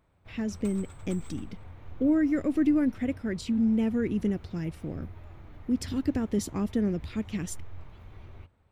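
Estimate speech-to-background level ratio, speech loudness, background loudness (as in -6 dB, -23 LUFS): 19.5 dB, -29.0 LUFS, -48.5 LUFS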